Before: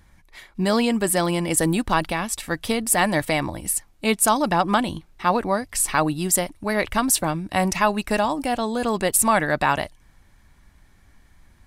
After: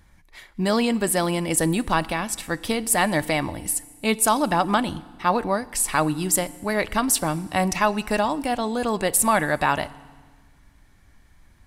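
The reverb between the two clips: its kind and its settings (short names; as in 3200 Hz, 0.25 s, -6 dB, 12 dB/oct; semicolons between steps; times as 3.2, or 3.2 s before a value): FDN reverb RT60 1.5 s, low-frequency decay 1.3×, high-frequency decay 0.95×, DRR 17.5 dB; gain -1 dB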